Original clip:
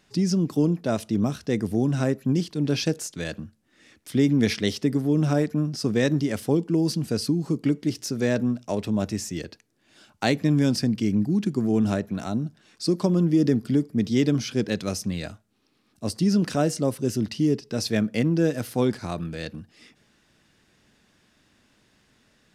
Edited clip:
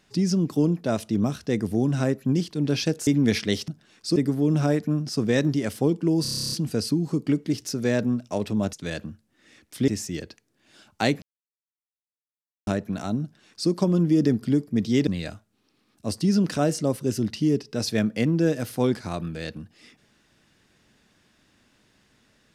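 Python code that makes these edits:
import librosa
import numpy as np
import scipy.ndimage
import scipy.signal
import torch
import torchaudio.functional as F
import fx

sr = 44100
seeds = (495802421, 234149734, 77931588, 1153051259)

y = fx.edit(x, sr, fx.move(start_s=3.07, length_s=1.15, to_s=9.1),
    fx.stutter(start_s=6.89, slice_s=0.03, count=11),
    fx.silence(start_s=10.44, length_s=1.45),
    fx.duplicate(start_s=12.44, length_s=0.48, to_s=4.83),
    fx.cut(start_s=14.29, length_s=0.76), tone=tone)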